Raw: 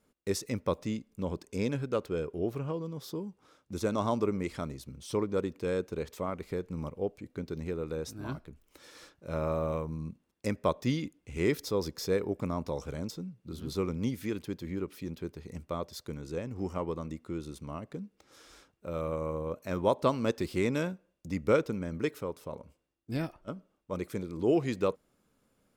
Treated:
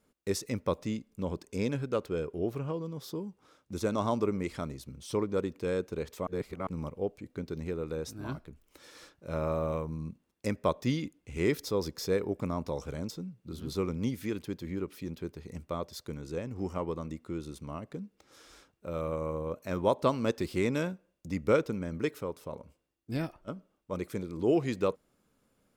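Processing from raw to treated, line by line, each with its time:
6.27–6.67 reverse

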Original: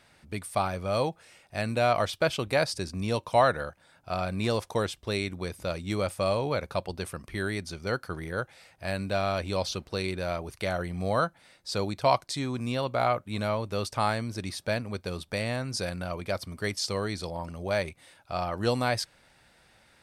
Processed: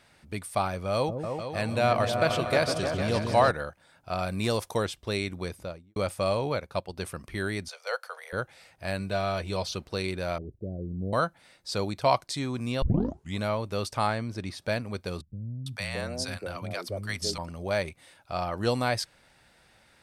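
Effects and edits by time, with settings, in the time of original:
0.93–3.51 repeats that get brighter 0.152 s, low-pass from 400 Hz, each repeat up 2 oct, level -3 dB
4.19–4.78 high shelf 8000 Hz +9.5 dB
5.45–5.96 studio fade out
6.52–6.97 upward expander, over -40 dBFS
7.68–8.33 steep high-pass 470 Hz 96 dB/oct
8.99–9.74 notch comb 270 Hz
10.38–11.13 inverse Chebyshev low-pass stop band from 1100 Hz, stop band 50 dB
12.82 tape start 0.56 s
14.07–14.62 high shelf 5400 Hz -10 dB
15.21–17.38 three bands offset in time lows, highs, mids 0.45/0.62 s, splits 220/680 Hz

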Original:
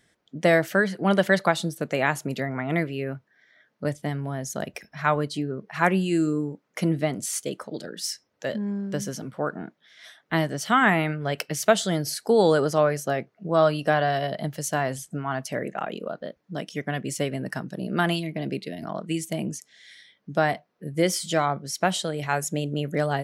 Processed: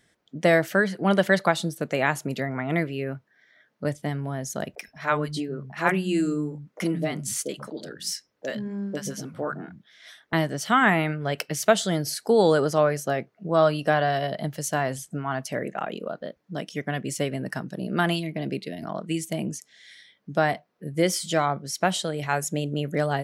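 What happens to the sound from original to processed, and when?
4.75–10.33 three bands offset in time mids, highs, lows 30/120 ms, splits 170/740 Hz

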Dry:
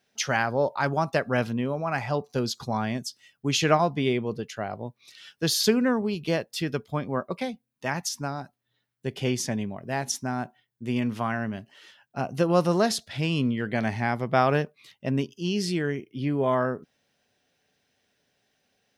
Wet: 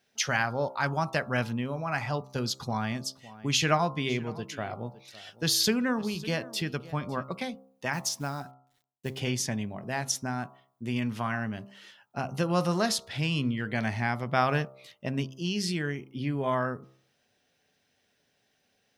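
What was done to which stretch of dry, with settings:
2.14–7.28 echo 0.555 s -20.5 dB
7.93–9.2 companded quantiser 6-bit
whole clip: de-hum 66.04 Hz, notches 21; dynamic EQ 420 Hz, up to -7 dB, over -36 dBFS, Q 0.74

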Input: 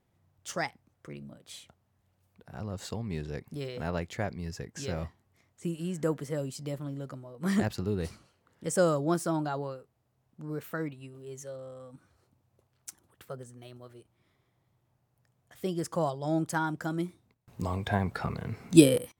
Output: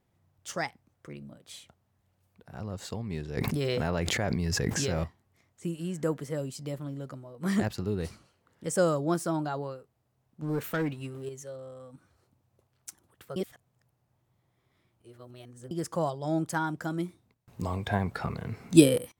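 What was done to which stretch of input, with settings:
3.37–5.04 fast leveller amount 100%
10.42–11.29 sample leveller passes 2
13.36–15.71 reverse

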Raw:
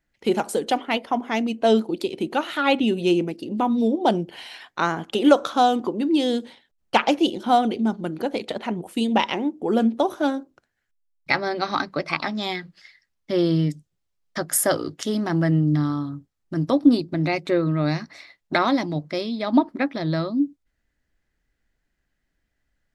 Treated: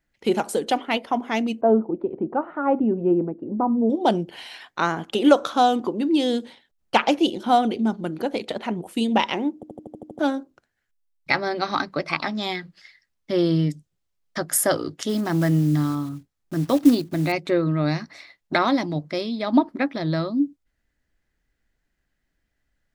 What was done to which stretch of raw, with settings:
1.61–3.9 LPF 1200 Hz 24 dB/oct
9.55 stutter in place 0.08 s, 8 plays
15.09–17.32 block floating point 5-bit

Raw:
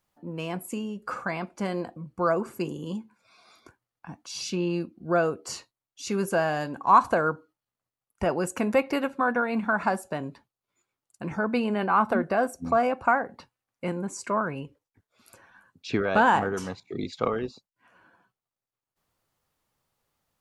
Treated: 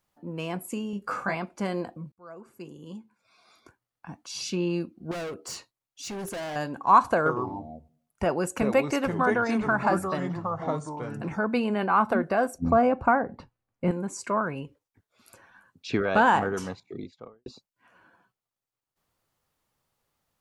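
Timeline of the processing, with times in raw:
0.91–1.35 doubler 20 ms -2.5 dB
2.12–4.1 fade in
5.11–6.56 overloaded stage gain 32.5 dB
7.15–11.29 echoes that change speed 0.105 s, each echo -4 st, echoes 3, each echo -6 dB
12.58–13.91 tilt -3 dB/oct
16.57–17.46 studio fade out

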